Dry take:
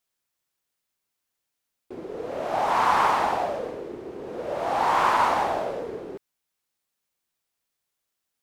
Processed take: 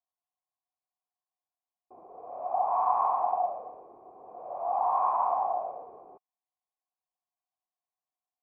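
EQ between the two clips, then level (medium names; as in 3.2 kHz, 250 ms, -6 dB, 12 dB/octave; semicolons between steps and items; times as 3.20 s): cascade formant filter a; distance through air 240 m; +4.0 dB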